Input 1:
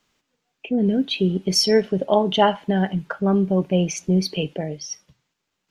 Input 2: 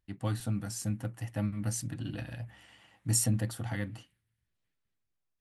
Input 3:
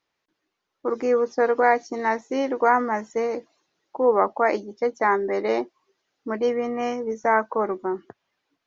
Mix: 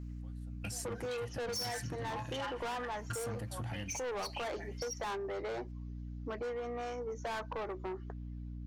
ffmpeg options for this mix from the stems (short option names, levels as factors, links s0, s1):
-filter_complex "[0:a]highpass=f=1000:w=0.5412,highpass=f=1000:w=1.3066,equalizer=f=3400:t=o:w=0.38:g=-10,aecho=1:1:5.7:0.81,volume=0.501,asplit=2[s0][s1];[1:a]alimiter=level_in=1.06:limit=0.0631:level=0:latency=1:release=233,volume=0.944,volume=1.26[s2];[2:a]highpass=360,aeval=exprs='val(0)+0.0126*(sin(2*PI*60*n/s)+sin(2*PI*2*60*n/s)/2+sin(2*PI*3*60*n/s)/3+sin(2*PI*4*60*n/s)/4+sin(2*PI*5*60*n/s)/5)':c=same,volume=14.1,asoftclip=hard,volume=0.0708,volume=0.668[s3];[s1]apad=whole_len=238501[s4];[s2][s4]sidechaingate=range=0.0447:threshold=0.00178:ratio=16:detection=peak[s5];[s0][s5][s3]amix=inputs=3:normalize=0,asoftclip=type=tanh:threshold=0.0422,acompressor=threshold=0.0141:ratio=6"